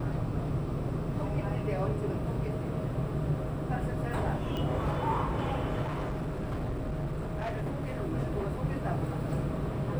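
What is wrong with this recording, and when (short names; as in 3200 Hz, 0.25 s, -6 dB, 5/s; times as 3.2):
4.57 pop -23 dBFS
5.82–7.98 clipped -30 dBFS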